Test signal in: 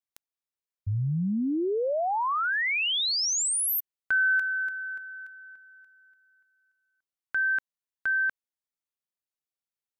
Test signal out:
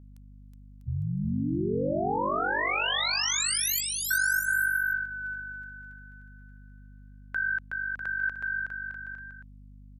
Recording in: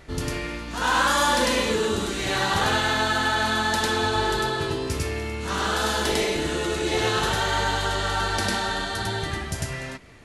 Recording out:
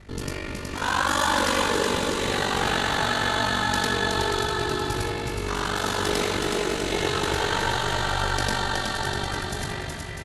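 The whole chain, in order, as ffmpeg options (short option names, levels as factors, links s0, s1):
-af "aeval=exprs='val(0)*sin(2*PI*24*n/s)':c=same,aecho=1:1:370|647.5|855.6|1012|1129:0.631|0.398|0.251|0.158|0.1,aeval=exprs='val(0)+0.00398*(sin(2*PI*50*n/s)+sin(2*PI*2*50*n/s)/2+sin(2*PI*3*50*n/s)/3+sin(2*PI*4*50*n/s)/4+sin(2*PI*5*50*n/s)/5)':c=same"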